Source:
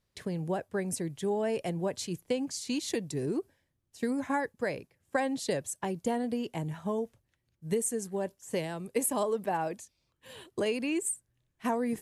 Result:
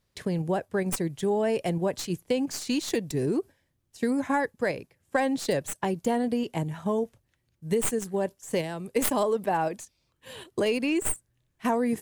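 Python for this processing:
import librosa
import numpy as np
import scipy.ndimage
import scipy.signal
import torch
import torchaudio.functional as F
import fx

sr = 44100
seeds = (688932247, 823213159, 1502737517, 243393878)

p1 = fx.tracing_dist(x, sr, depth_ms=0.097)
p2 = fx.level_steps(p1, sr, step_db=17)
p3 = p1 + (p2 * 10.0 ** (-2.0 / 20.0))
y = p3 * 10.0 ** (1.5 / 20.0)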